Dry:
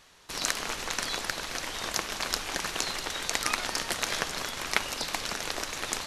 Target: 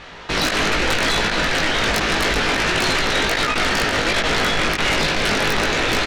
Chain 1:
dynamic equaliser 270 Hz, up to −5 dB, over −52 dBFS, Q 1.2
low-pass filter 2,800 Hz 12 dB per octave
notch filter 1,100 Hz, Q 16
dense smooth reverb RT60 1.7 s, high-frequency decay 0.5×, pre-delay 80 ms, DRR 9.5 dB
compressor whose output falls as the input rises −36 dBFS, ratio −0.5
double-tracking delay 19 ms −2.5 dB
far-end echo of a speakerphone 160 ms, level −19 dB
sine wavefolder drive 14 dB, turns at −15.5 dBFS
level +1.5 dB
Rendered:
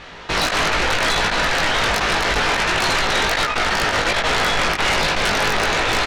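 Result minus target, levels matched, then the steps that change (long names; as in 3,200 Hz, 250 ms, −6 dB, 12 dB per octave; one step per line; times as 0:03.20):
250 Hz band −4.0 dB
change: dynamic equaliser 930 Hz, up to −5 dB, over −52 dBFS, Q 1.2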